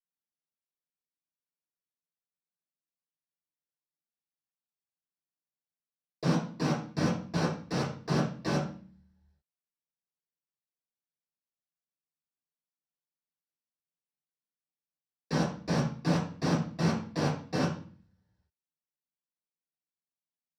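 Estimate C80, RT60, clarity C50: 10.0 dB, 0.45 s, 5.5 dB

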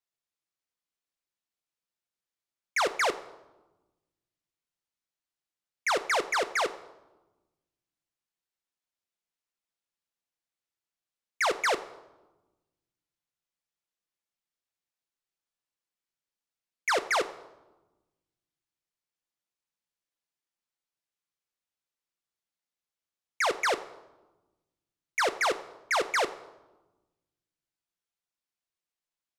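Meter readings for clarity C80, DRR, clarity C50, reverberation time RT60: 17.5 dB, 9.5 dB, 15.0 dB, 1.1 s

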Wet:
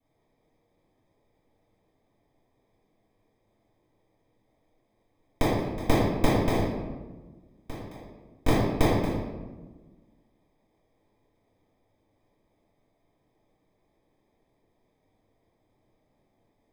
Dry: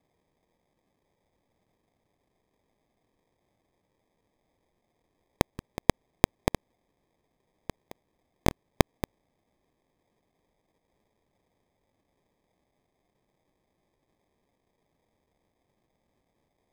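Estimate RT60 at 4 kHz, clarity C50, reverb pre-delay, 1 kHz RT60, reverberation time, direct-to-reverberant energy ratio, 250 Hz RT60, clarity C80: 0.75 s, -1.5 dB, 3 ms, 1.1 s, 1.3 s, -15.5 dB, 1.8 s, 1.5 dB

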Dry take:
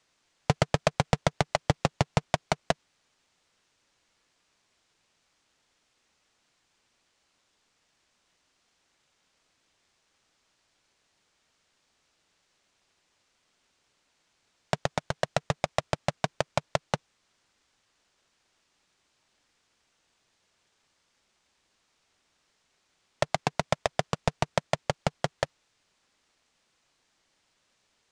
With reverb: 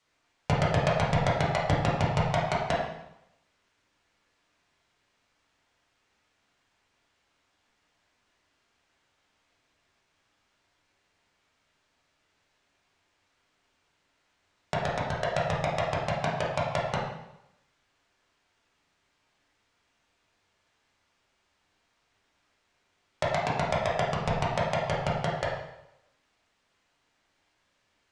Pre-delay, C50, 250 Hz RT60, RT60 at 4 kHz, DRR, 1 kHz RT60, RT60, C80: 5 ms, 1.5 dB, 0.85 s, 0.75 s, -7.0 dB, 0.85 s, 0.85 s, 5.0 dB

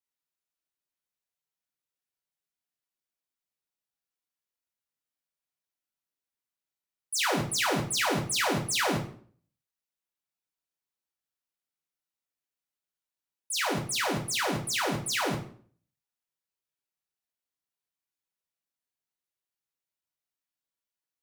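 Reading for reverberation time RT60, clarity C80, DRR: 0.50 s, 14.0 dB, -0.5 dB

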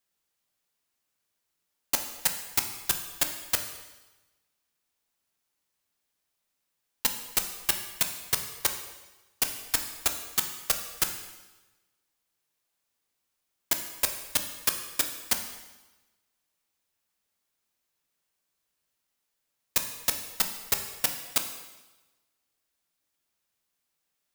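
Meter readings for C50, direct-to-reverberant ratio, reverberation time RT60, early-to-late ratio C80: 8.0 dB, 5.0 dB, 1.1 s, 10.0 dB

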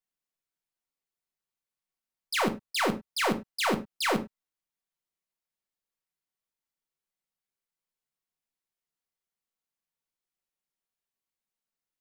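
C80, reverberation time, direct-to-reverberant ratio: 20.5 dB, no single decay rate, 5.0 dB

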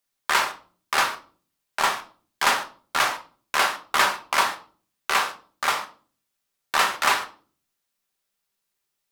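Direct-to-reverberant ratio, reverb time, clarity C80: 3.5 dB, 0.45 s, 19.5 dB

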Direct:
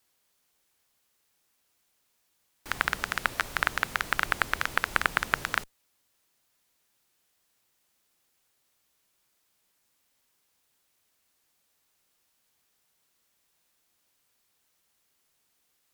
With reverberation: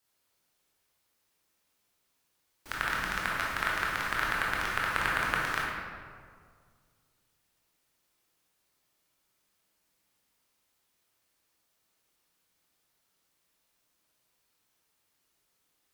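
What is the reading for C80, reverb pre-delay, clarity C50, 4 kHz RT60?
1.0 dB, 17 ms, -1.5 dB, 1.1 s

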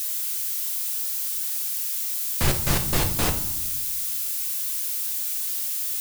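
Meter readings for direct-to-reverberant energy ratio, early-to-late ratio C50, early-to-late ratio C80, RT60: 5.0 dB, 10.5 dB, 14.0 dB, 0.80 s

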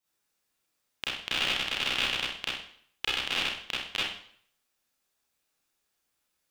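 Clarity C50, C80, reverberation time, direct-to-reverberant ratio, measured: -0.5 dB, 4.0 dB, 0.60 s, -9.0 dB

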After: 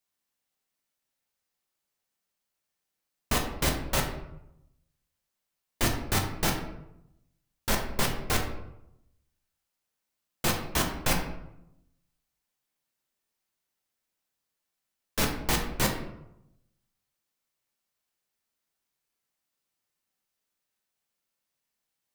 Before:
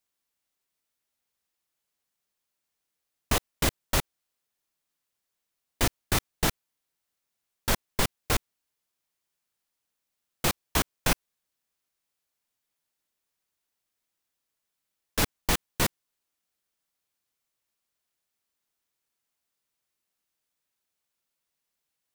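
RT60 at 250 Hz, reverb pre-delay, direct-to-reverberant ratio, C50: 1.0 s, 5 ms, 1.0 dB, 6.5 dB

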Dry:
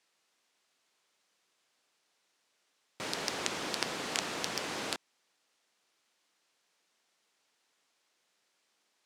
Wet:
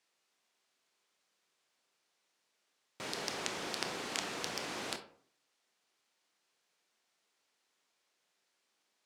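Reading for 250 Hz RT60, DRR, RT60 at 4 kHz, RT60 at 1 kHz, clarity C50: 0.55 s, 7.0 dB, 0.25 s, 0.50 s, 11.5 dB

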